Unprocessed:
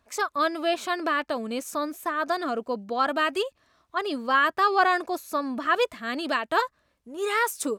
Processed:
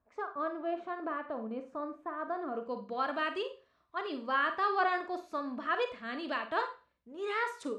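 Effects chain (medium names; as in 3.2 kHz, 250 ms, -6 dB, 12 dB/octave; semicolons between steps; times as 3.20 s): low-pass 1.2 kHz 12 dB/octave, from 2.55 s 3.9 kHz; Schroeder reverb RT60 0.33 s, combs from 32 ms, DRR 7 dB; trim -9 dB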